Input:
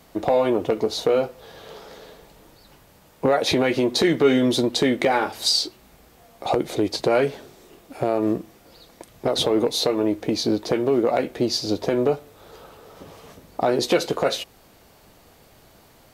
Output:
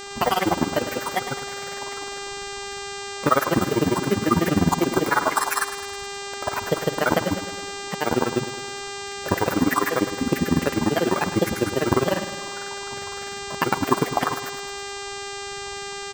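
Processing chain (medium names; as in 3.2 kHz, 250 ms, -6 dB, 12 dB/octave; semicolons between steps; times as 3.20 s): bit-reversed sample order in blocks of 16 samples; FFT filter 120 Hz 0 dB, 260 Hz -4 dB, 640 Hz -10 dB, 1.4 kHz +14 dB, 3.1 kHz -14 dB; in parallel at +1.5 dB: compression, threshold -22 dBFS, peak gain reduction 7.5 dB; on the sum: hum notches 50/100/150/200/250 Hz; granulator 52 ms, grains 20 per s, pitch spread up and down by 7 st; peaking EQ 2.2 kHz -9 dB 1.2 oct; mains buzz 400 Hz, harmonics 21, -40 dBFS -3 dB/octave; on a send: feedback delay 105 ms, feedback 56%, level -12 dB; on the sum: trim +3 dB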